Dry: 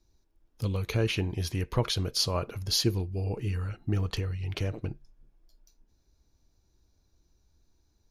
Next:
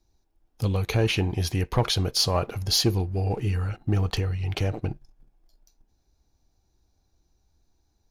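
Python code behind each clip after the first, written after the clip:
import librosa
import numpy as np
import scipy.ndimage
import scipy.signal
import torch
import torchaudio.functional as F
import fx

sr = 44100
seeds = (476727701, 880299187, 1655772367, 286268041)

y = fx.peak_eq(x, sr, hz=770.0, db=9.0, octaves=0.27)
y = fx.leveller(y, sr, passes=1)
y = y * librosa.db_to_amplitude(1.5)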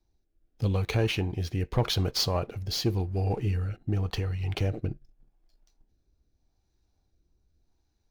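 y = scipy.ndimage.median_filter(x, 5, mode='constant')
y = fx.rotary(y, sr, hz=0.85)
y = y * librosa.db_to_amplitude(-1.5)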